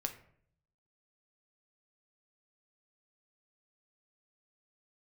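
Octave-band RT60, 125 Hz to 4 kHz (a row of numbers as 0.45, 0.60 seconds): 1.0, 0.80, 0.70, 0.55, 0.55, 0.35 seconds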